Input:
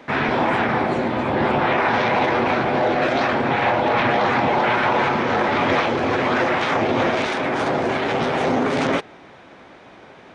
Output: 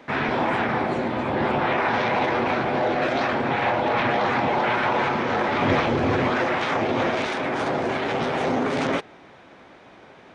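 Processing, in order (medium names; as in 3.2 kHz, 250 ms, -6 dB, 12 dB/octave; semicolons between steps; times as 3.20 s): 5.62–6.30 s: bass shelf 210 Hz +10.5 dB; trim -3.5 dB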